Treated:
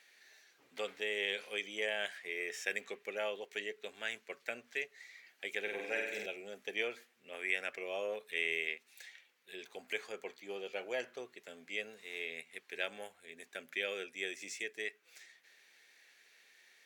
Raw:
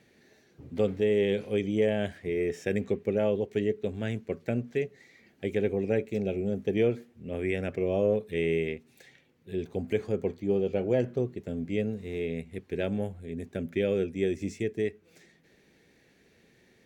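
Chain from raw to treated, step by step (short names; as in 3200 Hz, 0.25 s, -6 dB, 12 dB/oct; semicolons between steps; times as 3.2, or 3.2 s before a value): HPF 1300 Hz 12 dB/oct; 5.62–6.26 flutter echo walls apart 8.2 m, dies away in 0.97 s; gain +3.5 dB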